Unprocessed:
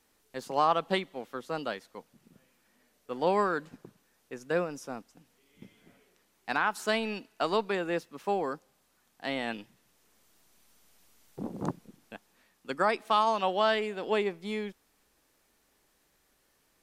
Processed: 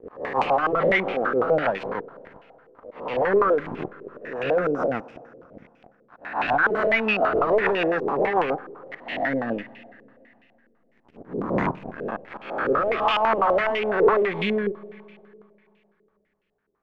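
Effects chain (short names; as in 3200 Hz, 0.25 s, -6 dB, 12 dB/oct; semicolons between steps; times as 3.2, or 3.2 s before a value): spectral swells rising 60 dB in 0.95 s; sample leveller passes 5; compressor 2:1, threshold -32 dBFS, peak gain reduction 10 dB; auto swell 0.358 s; rotary speaker horn 7 Hz, later 1.1 Hz, at 10.37; Schroeder reverb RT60 2.8 s, combs from 30 ms, DRR 16.5 dB; stepped low-pass 12 Hz 440–2600 Hz; gain +2 dB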